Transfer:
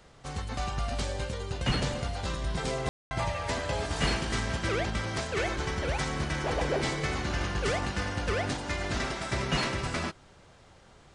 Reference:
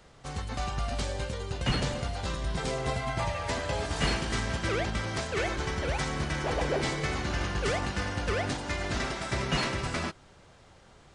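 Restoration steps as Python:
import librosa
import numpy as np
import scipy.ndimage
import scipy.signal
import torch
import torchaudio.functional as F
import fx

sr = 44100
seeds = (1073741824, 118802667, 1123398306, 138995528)

y = fx.fix_ambience(x, sr, seeds[0], print_start_s=10.56, print_end_s=11.06, start_s=2.89, end_s=3.11)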